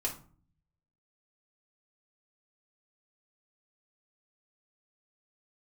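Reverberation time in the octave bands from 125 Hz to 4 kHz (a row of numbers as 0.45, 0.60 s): 1.0, 0.80, 0.45, 0.45, 0.30, 0.25 s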